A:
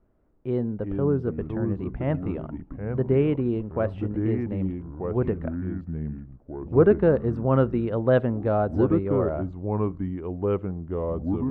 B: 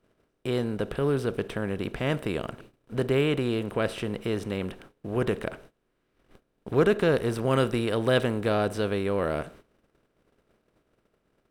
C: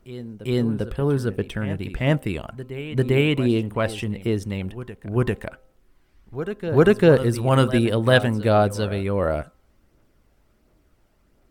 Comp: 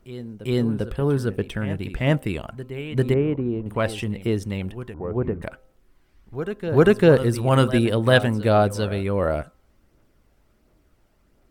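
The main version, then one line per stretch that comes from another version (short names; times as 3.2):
C
3.14–3.66 from A
4.94–5.42 from A
not used: B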